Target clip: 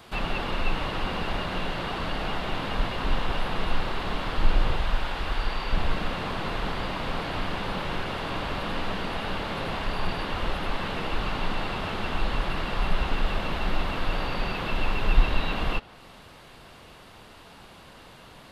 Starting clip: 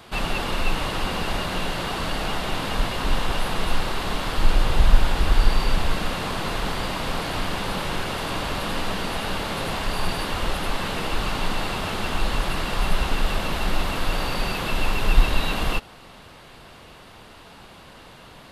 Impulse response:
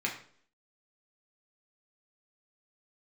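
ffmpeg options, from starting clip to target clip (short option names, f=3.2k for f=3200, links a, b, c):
-filter_complex "[0:a]asettb=1/sr,asplit=3[a][b][c];[a]atrim=end=4.764[d];[b]atrim=start=4.76:end=5.73,asetpts=PTS-STARTPTS,afade=t=in:d=0.004:c=qsin,afade=t=out:st=0.966:d=0.004:c=qsin,lowshelf=f=400:g=-8.5[e];[c]atrim=start=5.726[f];[d][e]acrossfade=d=0.004:c1=hsin:c2=qsin[g];[g][f]acrossfade=d=0.004:c1=qsin:c2=hsin,acrossover=split=4300[h][i];[i]acompressor=threshold=-53dB:ratio=12[j];[h][j]amix=inputs=2:normalize=0,volume=-3dB"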